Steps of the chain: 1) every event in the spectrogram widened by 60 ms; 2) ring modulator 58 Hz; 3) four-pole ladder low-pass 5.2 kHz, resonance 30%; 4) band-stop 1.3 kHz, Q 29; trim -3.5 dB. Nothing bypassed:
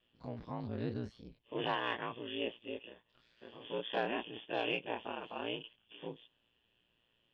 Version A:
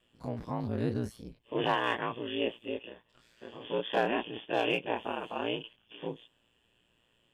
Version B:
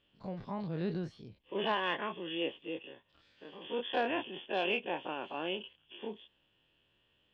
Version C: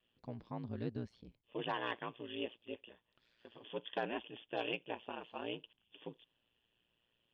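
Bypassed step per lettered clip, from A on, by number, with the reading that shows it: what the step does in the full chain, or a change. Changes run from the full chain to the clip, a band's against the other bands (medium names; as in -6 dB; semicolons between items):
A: 3, 4 kHz band -3.0 dB; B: 2, crest factor change -1.5 dB; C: 1, loudness change -3.5 LU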